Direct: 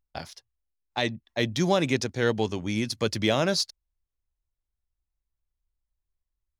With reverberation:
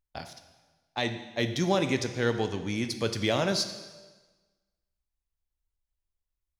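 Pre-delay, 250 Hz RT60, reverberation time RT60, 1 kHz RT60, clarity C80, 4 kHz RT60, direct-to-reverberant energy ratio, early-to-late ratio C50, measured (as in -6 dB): 5 ms, 1.3 s, 1.3 s, 1.3 s, 11.5 dB, 1.2 s, 7.5 dB, 10.0 dB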